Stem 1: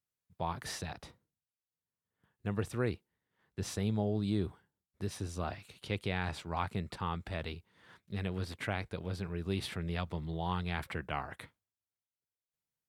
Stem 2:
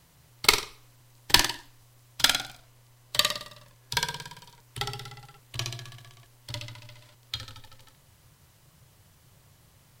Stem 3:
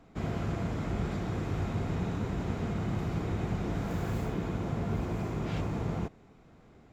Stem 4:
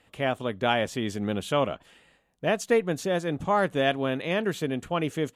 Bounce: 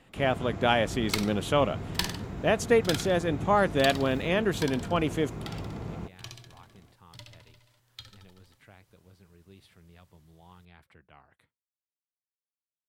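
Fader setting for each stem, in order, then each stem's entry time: -19.0 dB, -11.0 dB, -4.5 dB, +0.5 dB; 0.00 s, 0.65 s, 0.00 s, 0.00 s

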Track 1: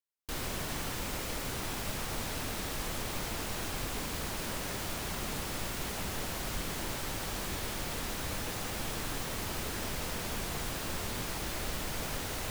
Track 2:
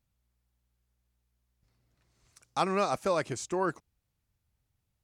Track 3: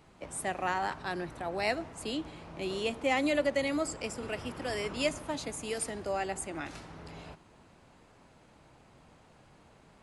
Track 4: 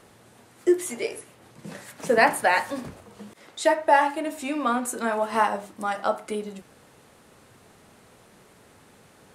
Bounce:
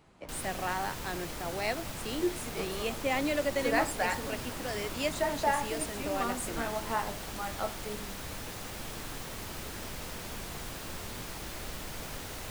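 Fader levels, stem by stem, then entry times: -4.0 dB, -18.0 dB, -2.0 dB, -10.5 dB; 0.00 s, 0.00 s, 0.00 s, 1.55 s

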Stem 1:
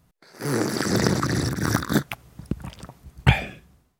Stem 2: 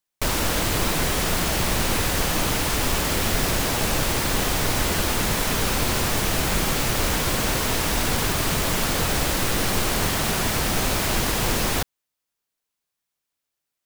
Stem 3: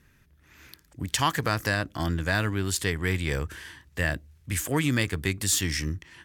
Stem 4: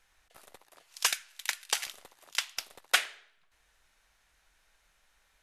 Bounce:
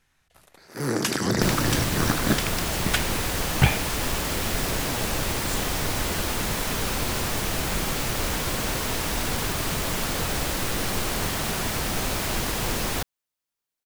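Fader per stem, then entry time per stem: -2.0 dB, -4.0 dB, -13.0 dB, -1.0 dB; 0.35 s, 1.20 s, 0.00 s, 0.00 s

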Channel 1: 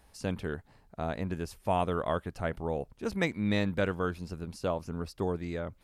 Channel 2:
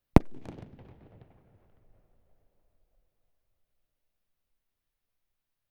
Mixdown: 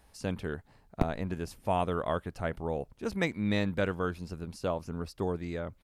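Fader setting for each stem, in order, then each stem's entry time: -0.5 dB, -11.0 dB; 0.00 s, 0.85 s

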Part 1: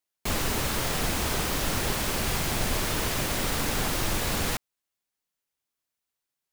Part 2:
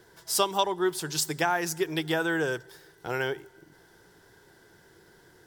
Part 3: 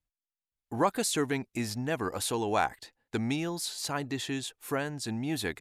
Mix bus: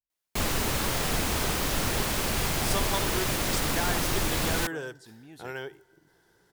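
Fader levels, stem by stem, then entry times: 0.0 dB, -7.5 dB, -17.0 dB; 0.10 s, 2.35 s, 0.00 s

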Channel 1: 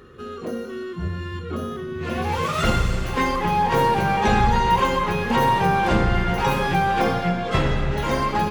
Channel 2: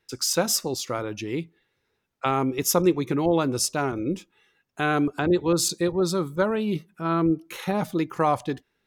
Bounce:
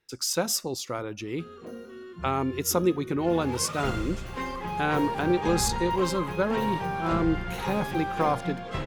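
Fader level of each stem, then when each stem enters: -11.5 dB, -3.5 dB; 1.20 s, 0.00 s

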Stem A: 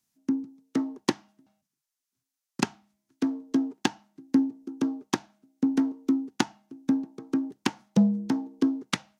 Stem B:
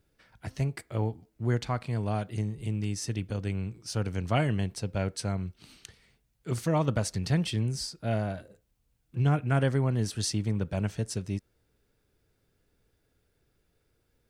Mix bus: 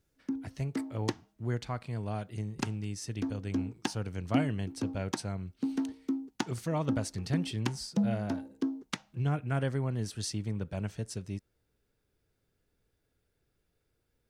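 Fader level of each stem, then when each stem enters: -8.0 dB, -5.5 dB; 0.00 s, 0.00 s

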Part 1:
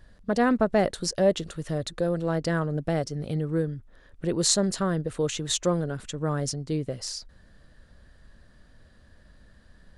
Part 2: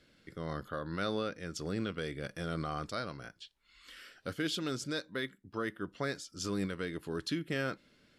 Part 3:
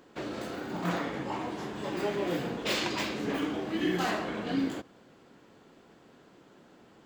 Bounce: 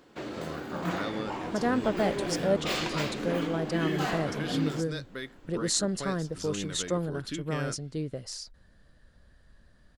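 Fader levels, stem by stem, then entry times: -5.0 dB, -2.0 dB, -1.0 dB; 1.25 s, 0.00 s, 0.00 s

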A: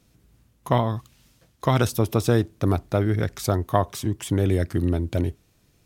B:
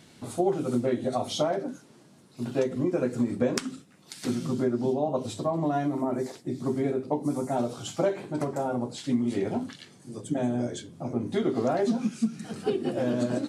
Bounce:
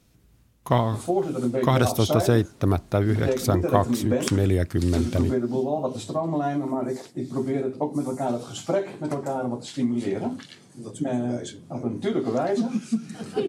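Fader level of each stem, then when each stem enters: 0.0 dB, +1.5 dB; 0.00 s, 0.70 s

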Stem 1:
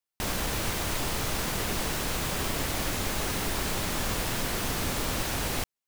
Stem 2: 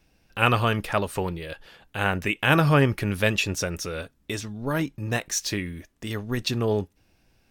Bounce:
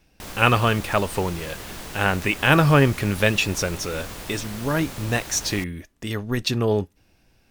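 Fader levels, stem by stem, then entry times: -6.5 dB, +3.0 dB; 0.00 s, 0.00 s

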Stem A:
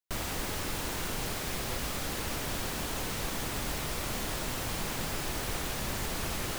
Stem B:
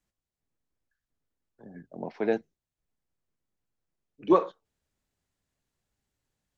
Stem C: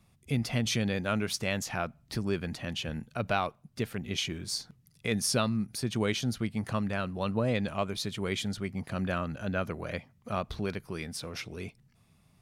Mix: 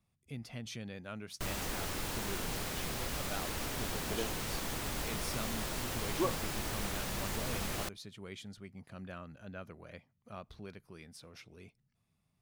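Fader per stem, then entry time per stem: -3.5 dB, -12.5 dB, -14.5 dB; 1.30 s, 1.90 s, 0.00 s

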